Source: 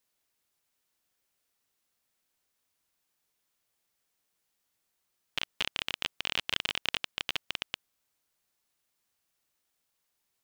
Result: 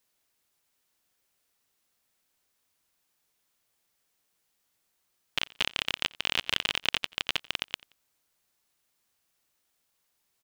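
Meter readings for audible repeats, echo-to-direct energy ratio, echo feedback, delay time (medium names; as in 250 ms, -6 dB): 2, -23.0 dB, 32%, 88 ms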